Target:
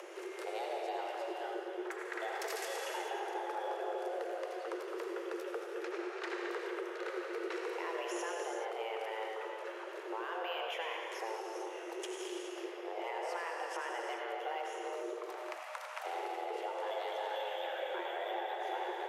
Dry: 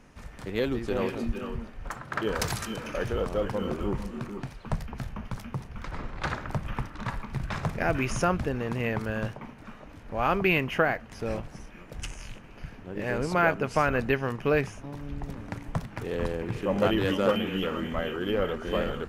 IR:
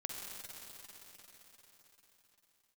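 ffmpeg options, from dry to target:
-filter_complex "[0:a]asettb=1/sr,asplit=3[a][b][c];[a]atrim=end=15.134[d];[b]atrim=start=15.13:end=16.05,asetpts=PTS-STARTPTS,afade=t=in:d=0.004:c=qsin,afade=t=out:st=0.916:d=0.004:c=qsin,highpass=f=310:w=0.5412,highpass=f=310:w=1.3066[e];[c]atrim=start=16.046[f];[d][e]acrossfade=d=0.004:c1=hsin:c2=qsin[g];[g][f]acrossfade=d=0.004:c1=qsin:c2=hsin,acompressor=mode=upward:threshold=-37dB:ratio=2.5,alimiter=limit=-20.5dB:level=0:latency=1,acompressor=threshold=-35dB:ratio=6,afreqshift=330[h];[1:a]atrim=start_sample=2205,afade=t=out:st=0.31:d=0.01,atrim=end_sample=14112,asetrate=26901,aresample=44100[i];[h][i]afir=irnorm=-1:irlink=0,volume=-2.5dB"

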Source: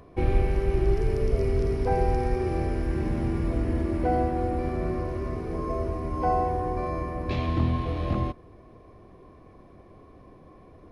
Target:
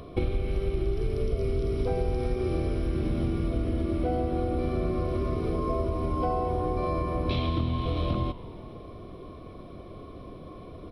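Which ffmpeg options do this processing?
-filter_complex "[0:a]superequalizer=9b=0.398:11b=0.398:13b=2.24:15b=0.251,acompressor=threshold=-32dB:ratio=6,asplit=7[a][b][c][d][e][f][g];[b]adelay=136,afreqshift=-61,volume=-18dB[h];[c]adelay=272,afreqshift=-122,volume=-21.7dB[i];[d]adelay=408,afreqshift=-183,volume=-25.5dB[j];[e]adelay=544,afreqshift=-244,volume=-29.2dB[k];[f]adelay=680,afreqshift=-305,volume=-33dB[l];[g]adelay=816,afreqshift=-366,volume=-36.7dB[m];[a][h][i][j][k][l][m]amix=inputs=7:normalize=0,volume=7.5dB"

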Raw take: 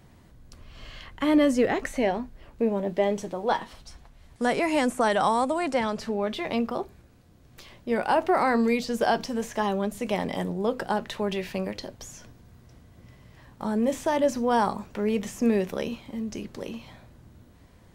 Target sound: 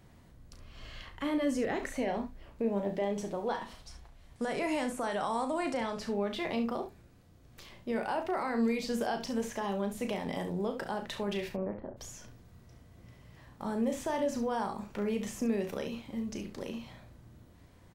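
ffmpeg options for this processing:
-filter_complex "[0:a]asplit=3[a][b][c];[a]afade=t=out:st=11.48:d=0.02[d];[b]lowpass=f=1.4k:w=0.5412,lowpass=f=1.4k:w=1.3066,afade=t=in:st=11.48:d=0.02,afade=t=out:st=11.96:d=0.02[e];[c]afade=t=in:st=11.96:d=0.02[f];[d][e][f]amix=inputs=3:normalize=0,alimiter=limit=-19.5dB:level=0:latency=1:release=130,aecho=1:1:35|69:0.398|0.266,volume=-4.5dB"

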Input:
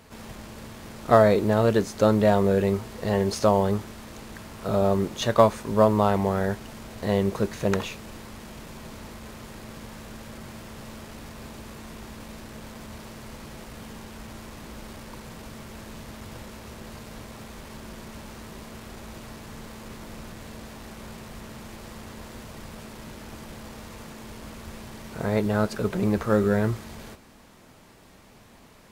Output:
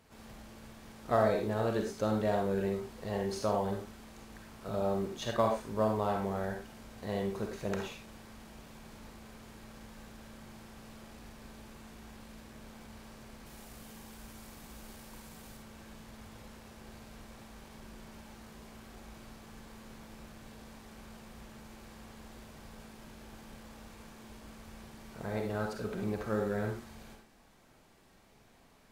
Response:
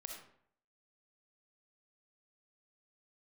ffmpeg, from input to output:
-filter_complex "[0:a]asettb=1/sr,asplit=3[a][b][c];[a]atrim=end=13.464[d];[b]atrim=start=13.46:end=15.57,asetpts=PTS-STARTPTS,afade=t=in:d=0.004:c=qsin,afade=t=out:st=2.106:d=0.004:c=qsin,highshelf=f=7k:g=10.5[e];[c]atrim=start=15.566[f];[d][e]acrossfade=d=0.004:c1=hsin:c2=qsin[g];[g][f]acrossfade=d=0.004:c1=qsin:c2=hsin[h];[1:a]atrim=start_sample=2205,afade=t=out:st=0.2:d=0.01,atrim=end_sample=9261,asetrate=52920,aresample=44100[i];[h][i]afir=irnorm=-1:irlink=0,volume=-4.5dB"

